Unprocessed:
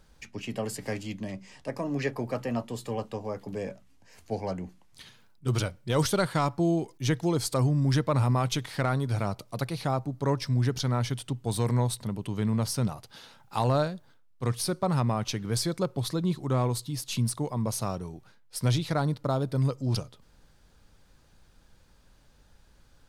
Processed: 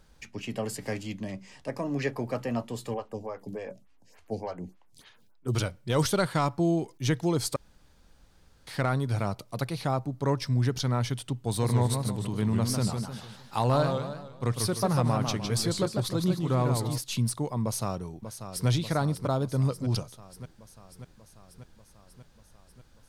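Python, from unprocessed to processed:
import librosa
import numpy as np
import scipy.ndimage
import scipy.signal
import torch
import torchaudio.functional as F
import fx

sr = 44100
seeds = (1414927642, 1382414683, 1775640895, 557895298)

y = fx.stagger_phaser(x, sr, hz=3.4, at=(2.94, 5.55))
y = fx.echo_warbled(y, sr, ms=152, feedback_pct=42, rate_hz=2.8, cents=214, wet_db=-5.5, at=(11.47, 16.98))
y = fx.echo_throw(y, sr, start_s=17.63, length_s=1.05, ms=590, feedback_pct=70, wet_db=-9.5)
y = fx.edit(y, sr, fx.room_tone_fill(start_s=7.56, length_s=1.11), tone=tone)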